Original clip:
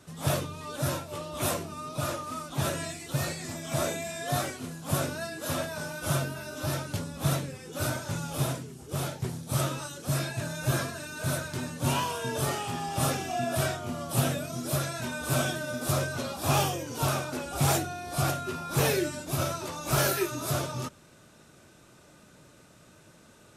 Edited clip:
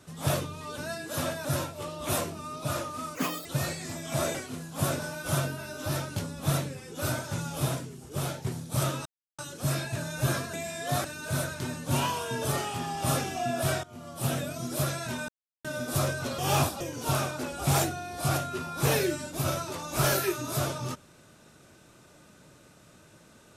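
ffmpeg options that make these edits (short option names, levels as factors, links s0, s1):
-filter_complex "[0:a]asplit=15[s0][s1][s2][s3][s4][s5][s6][s7][s8][s9][s10][s11][s12][s13][s14];[s0]atrim=end=0.782[s15];[s1]atrim=start=5.098:end=5.772[s16];[s2]atrim=start=0.778:end=2.484[s17];[s3]atrim=start=2.48:end=3.05,asetpts=PTS-STARTPTS,asetrate=82467,aresample=44100,atrim=end_sample=13442,asetpts=PTS-STARTPTS[s18];[s4]atrim=start=3.046:end=3.942[s19];[s5]atrim=start=4.448:end=5.102[s20];[s6]atrim=start=5.768:end=9.83,asetpts=PTS-STARTPTS,afade=t=out:st=4.058:d=0.004:c=hsin,apad=pad_dur=0.33[s21];[s7]atrim=start=9.83:end=10.982,asetpts=PTS-STARTPTS,afade=t=in:d=0.004:c=hsin[s22];[s8]atrim=start=3.938:end=4.452[s23];[s9]atrim=start=10.978:end=13.77,asetpts=PTS-STARTPTS,afade=t=out:st=2.788:d=0.004:c=hsin:silence=0.149624[s24];[s10]atrim=start=13.77:end=15.22,asetpts=PTS-STARTPTS,afade=t=in:d=0.7:silence=0.149624,afade=t=out:st=1.446:d=0.004:c=hsin[s25];[s11]atrim=start=15.22:end=15.58,asetpts=PTS-STARTPTS,volume=0[s26];[s12]atrim=start=15.58:end=16.322,asetpts=PTS-STARTPTS,afade=t=in:d=0.004:c=hsin[s27];[s13]atrim=start=16.318:end=16.742,asetpts=PTS-STARTPTS,areverse[s28];[s14]atrim=start=16.738[s29];[s15][s16]acrossfade=d=0.004:c1=hsin:c2=hsin[s30];[s30][s17]acrossfade=d=0.004:c1=hsin:c2=hsin[s31];[s31][s18]acrossfade=d=0.004:c1=hsin:c2=hsin[s32];[s32][s19]acrossfade=d=0.004:c1=hsin:c2=hsin[s33];[s33][s20]acrossfade=d=0.004:c1=hsin:c2=hsin[s34];[s21][s22]concat=n=2:v=0:a=1[s35];[s34][s35]acrossfade=d=0.004:c1=hsin:c2=hsin[s36];[s36][s23]acrossfade=d=0.004:c1=hsin:c2=hsin[s37];[s24][s25][s26][s27]concat=n=4:v=0:a=1[s38];[s37][s38]acrossfade=d=0.004:c1=hsin:c2=hsin[s39];[s39][s28]acrossfade=d=0.004:c1=hsin:c2=hsin[s40];[s40][s29]acrossfade=d=0.004:c1=hsin:c2=hsin"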